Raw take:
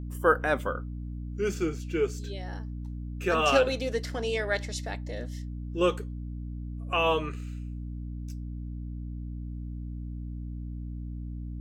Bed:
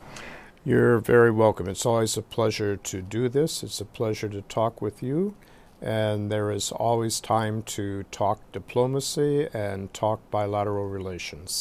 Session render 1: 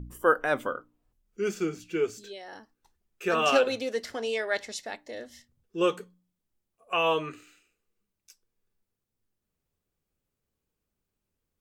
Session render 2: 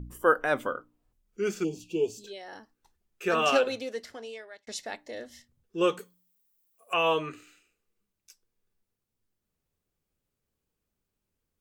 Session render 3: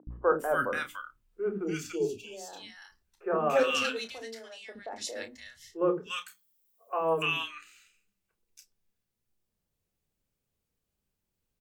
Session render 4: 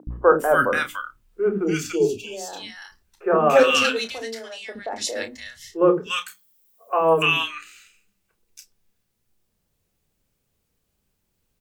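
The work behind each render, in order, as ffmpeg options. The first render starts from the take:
-af "bandreject=f=60:t=h:w=4,bandreject=f=120:t=h:w=4,bandreject=f=180:t=h:w=4,bandreject=f=240:t=h:w=4,bandreject=f=300:t=h:w=4"
-filter_complex "[0:a]asplit=3[a][b][c];[a]afade=t=out:st=1.63:d=0.02[d];[b]asuperstop=centerf=1600:order=20:qfactor=1.1,afade=t=in:st=1.63:d=0.02,afade=t=out:st=2.26:d=0.02[e];[c]afade=t=in:st=2.26:d=0.02[f];[d][e][f]amix=inputs=3:normalize=0,asettb=1/sr,asplit=3[g][h][i];[g]atrim=end=5.994[j];[h]atrim=start=5.99:end=6.94,asetpts=PTS-STARTPTS,afade=t=in:d=0.004:c=qsin,afade=t=out:st=0.946:d=0.004:c=qsin,aemphasis=mode=production:type=bsi[k];[i]atrim=start=6.936[l];[j][k]acrossfade=d=0.004:c1=hsin:c2=qsin[m];[m][l]acrossfade=d=0.004:c1=qsin:c2=hsin,asplit=2[n][o];[n]atrim=end=4.67,asetpts=PTS-STARTPTS,afade=t=out:st=3.39:d=1.28[p];[o]atrim=start=4.67,asetpts=PTS-STARTPTS,afade=t=in:d=0.004:c=hsin[q];[p][q]concat=n=2:v=0:a=1"
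-filter_complex "[0:a]asplit=2[a][b];[b]adelay=31,volume=-9.5dB[c];[a][c]amix=inputs=2:normalize=0,acrossover=split=340|1300[d][e][f];[d]adelay=70[g];[f]adelay=290[h];[g][e][h]amix=inputs=3:normalize=0"
-af "volume=10dB,alimiter=limit=-3dB:level=0:latency=1"

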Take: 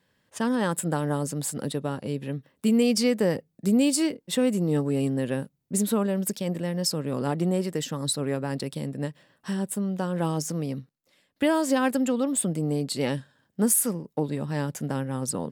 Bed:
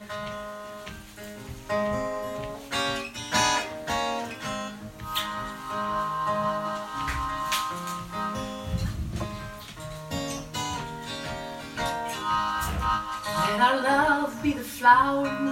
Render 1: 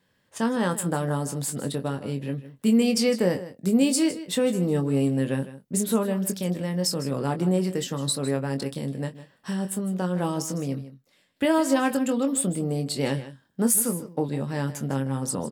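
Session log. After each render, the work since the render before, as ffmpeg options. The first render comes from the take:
-filter_complex "[0:a]asplit=2[a][b];[b]adelay=22,volume=-7.5dB[c];[a][c]amix=inputs=2:normalize=0,aecho=1:1:156:0.188"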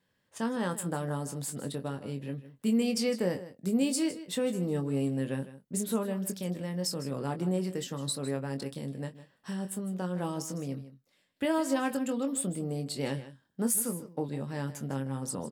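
-af "volume=-7dB"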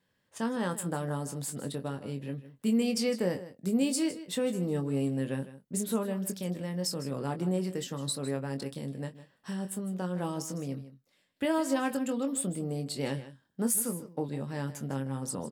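-af anull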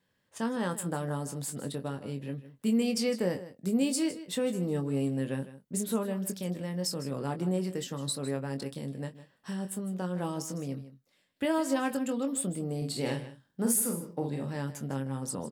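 -filter_complex "[0:a]asettb=1/sr,asplit=3[a][b][c];[a]atrim=end=12.774[d];[b]atrim=start=12.77:end=14.56,asetpts=PTS-STARTPTS,afade=t=in:d=0.004:c=qsin,afade=t=out:st=1.786:d=0.004:c=qsin,asplit=2[e][f];[f]adelay=47,volume=-4.5dB[g];[e][g]amix=inputs=2:normalize=0,atrim=end_sample=78939[h];[c]atrim=start=14.556[i];[d][h]acrossfade=d=0.004:c1=hsin:c2=qsin[j];[j][i]acrossfade=d=0.004:c1=qsin:c2=hsin"

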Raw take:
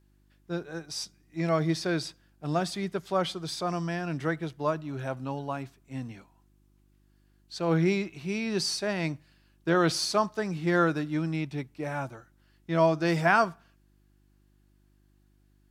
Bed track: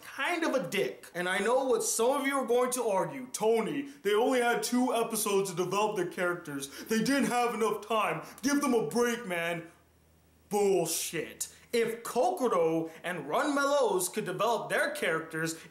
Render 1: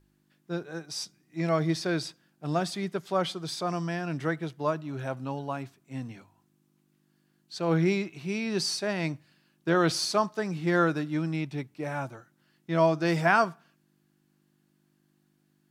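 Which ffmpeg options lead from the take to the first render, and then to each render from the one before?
-af "bandreject=f=50:t=h:w=4,bandreject=f=100:t=h:w=4"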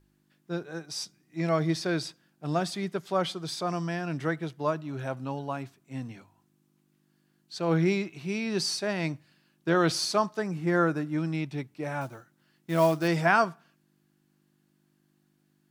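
-filter_complex "[0:a]asettb=1/sr,asplit=3[a][b][c];[a]atrim=end=10.424[d];[b]atrim=start=10.42:end=11.18,asetpts=PTS-STARTPTS,afade=t=in:d=0.004:c=qsin,afade=t=out:st=0.756:d=0.004:c=qsin,equalizer=f=3.7k:w=1.3:g=-9.5[e];[c]atrim=start=11.176[f];[d][e]acrossfade=d=0.004:c1=hsin:c2=qsin[g];[g][f]acrossfade=d=0.004:c1=qsin:c2=hsin,asettb=1/sr,asplit=3[h][i][j];[h]atrim=end=12.014[k];[i]atrim=start=12.01:end=13.08,asetpts=PTS-STARTPTS,afade=t=in:d=0.004:c=qsin,afade=t=out:st=1.066:d=0.004:c=qsin,acrusher=bits=5:mode=log:mix=0:aa=0.000001[l];[j]atrim=start=13.076[m];[k][l]acrossfade=d=0.004:c1=hsin:c2=qsin[n];[n][m]acrossfade=d=0.004:c1=qsin:c2=hsin"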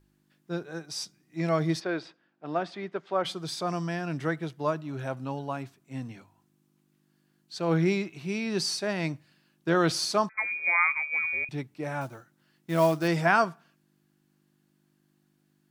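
-filter_complex "[0:a]asplit=3[a][b][c];[a]afade=t=out:st=1.79:d=0.02[d];[b]highpass=290,lowpass=2.6k,afade=t=in:st=1.79:d=0.02,afade=t=out:st=3.24:d=0.02[e];[c]afade=t=in:st=3.24:d=0.02[f];[d][e][f]amix=inputs=3:normalize=0,asettb=1/sr,asplit=3[g][h][i];[g]atrim=end=10.294[j];[h]atrim=start=10.29:end=11.49,asetpts=PTS-STARTPTS,afade=t=in:d=0.004:c=qsin,afade=t=out:st=1.196:d=0.004:c=qsin,lowpass=f=2.2k:t=q:w=0.5098,lowpass=f=2.2k:t=q:w=0.6013,lowpass=f=2.2k:t=q:w=0.9,lowpass=f=2.2k:t=q:w=2.563,afreqshift=-2600[k];[i]atrim=start=11.486[l];[j][k]acrossfade=d=0.004:c1=hsin:c2=qsin[m];[m][l]acrossfade=d=0.004:c1=qsin:c2=hsin"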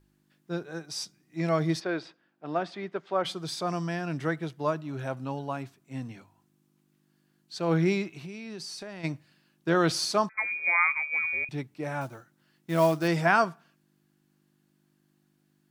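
-filter_complex "[0:a]asplit=3[a][b][c];[a]afade=t=out:st=8.17:d=0.02[d];[b]acompressor=threshold=-36dB:ratio=12:attack=3.2:release=140:knee=1:detection=peak,afade=t=in:st=8.17:d=0.02,afade=t=out:st=9.03:d=0.02[e];[c]afade=t=in:st=9.03:d=0.02[f];[d][e][f]amix=inputs=3:normalize=0"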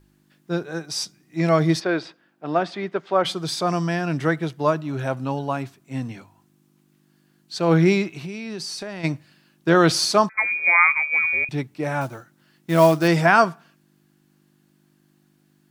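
-af "volume=8dB,alimiter=limit=-3dB:level=0:latency=1"

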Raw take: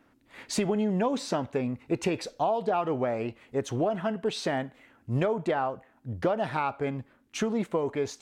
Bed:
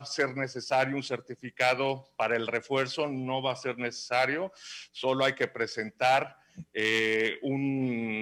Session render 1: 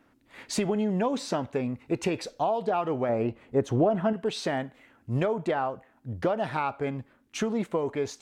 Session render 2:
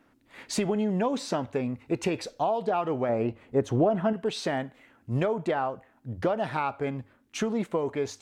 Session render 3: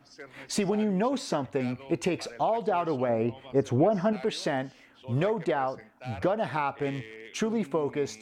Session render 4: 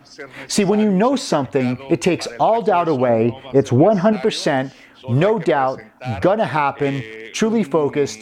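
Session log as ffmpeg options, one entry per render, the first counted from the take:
-filter_complex "[0:a]asettb=1/sr,asplit=3[a][b][c];[a]atrim=end=3.094[d];[b]atrim=start=3.09:end=4.13,asetpts=PTS-STARTPTS,afade=t=in:d=0.004:c=qsin,afade=t=out:st=1.036:d=0.004:c=qsin,tiltshelf=f=1.4k:g=5.5[e];[c]atrim=start=4.126[f];[d][e]acrossfade=d=0.004:c1=hsin:c2=qsin[g];[g][f]acrossfade=d=0.004:c1=qsin:c2=hsin"
-af "bandreject=f=50:t=h:w=6,bandreject=f=100:t=h:w=6"
-filter_complex "[1:a]volume=-18dB[a];[0:a][a]amix=inputs=2:normalize=0"
-af "volume=11dB,alimiter=limit=-3dB:level=0:latency=1"

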